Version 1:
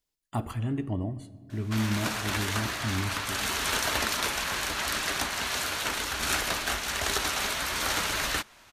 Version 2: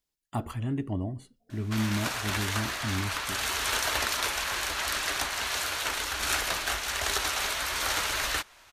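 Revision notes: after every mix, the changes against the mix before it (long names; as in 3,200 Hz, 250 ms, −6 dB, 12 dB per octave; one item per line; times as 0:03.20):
background: add parametric band 190 Hz −10 dB 1.4 octaves
reverb: off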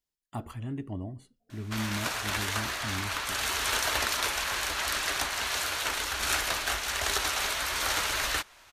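speech −5.0 dB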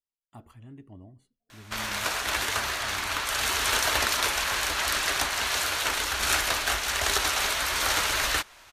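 speech −11.0 dB
background +3.5 dB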